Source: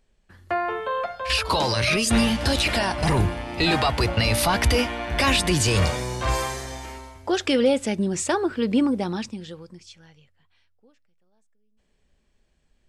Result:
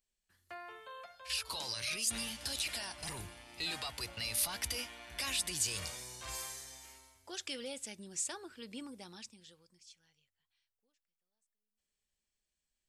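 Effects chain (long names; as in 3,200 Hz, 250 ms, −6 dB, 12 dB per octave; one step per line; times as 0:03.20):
first-order pre-emphasis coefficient 0.9
level −7 dB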